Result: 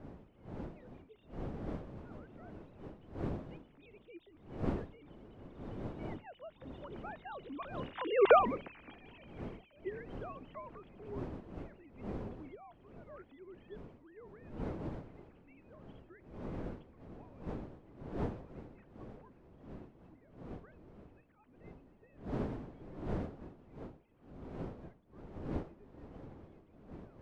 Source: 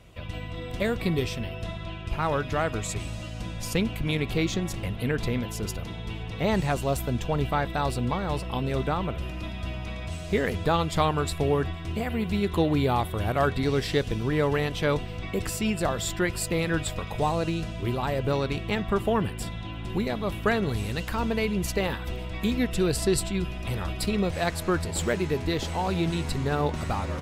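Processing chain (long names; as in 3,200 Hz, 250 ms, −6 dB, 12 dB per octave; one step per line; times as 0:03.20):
three sine waves on the formant tracks
source passing by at 0:08.30, 22 m/s, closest 1.1 metres
wind on the microphone 350 Hz −54 dBFS
level +8 dB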